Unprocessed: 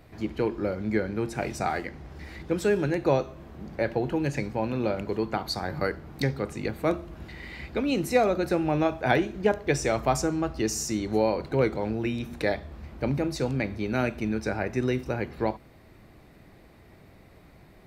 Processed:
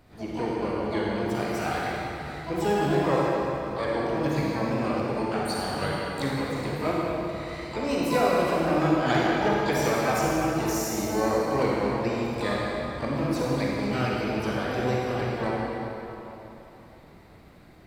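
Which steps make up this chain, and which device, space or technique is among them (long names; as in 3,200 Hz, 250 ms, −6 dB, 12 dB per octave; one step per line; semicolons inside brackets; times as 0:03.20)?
shimmer-style reverb (pitch-shifted copies added +12 semitones −6 dB; convolution reverb RT60 3.3 s, pre-delay 37 ms, DRR −4.5 dB)
level −5.5 dB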